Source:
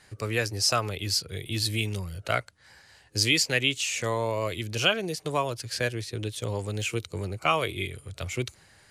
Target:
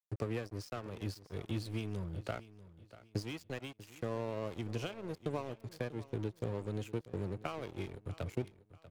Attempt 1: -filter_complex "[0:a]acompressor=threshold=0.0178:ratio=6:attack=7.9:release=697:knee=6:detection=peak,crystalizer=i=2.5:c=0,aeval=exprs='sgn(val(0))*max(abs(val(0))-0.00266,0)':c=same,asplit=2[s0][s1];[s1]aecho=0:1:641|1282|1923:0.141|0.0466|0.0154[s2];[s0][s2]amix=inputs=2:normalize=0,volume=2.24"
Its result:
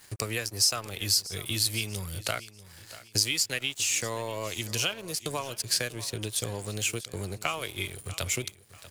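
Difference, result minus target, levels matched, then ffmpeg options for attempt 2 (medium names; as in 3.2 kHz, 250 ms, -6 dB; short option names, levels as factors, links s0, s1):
250 Hz band -11.0 dB
-filter_complex "[0:a]acompressor=threshold=0.0178:ratio=6:attack=7.9:release=697:knee=6:detection=peak,bandpass=f=220:t=q:w=0.52:csg=0,crystalizer=i=2.5:c=0,aeval=exprs='sgn(val(0))*max(abs(val(0))-0.00266,0)':c=same,asplit=2[s0][s1];[s1]aecho=0:1:641|1282|1923:0.141|0.0466|0.0154[s2];[s0][s2]amix=inputs=2:normalize=0,volume=2.24"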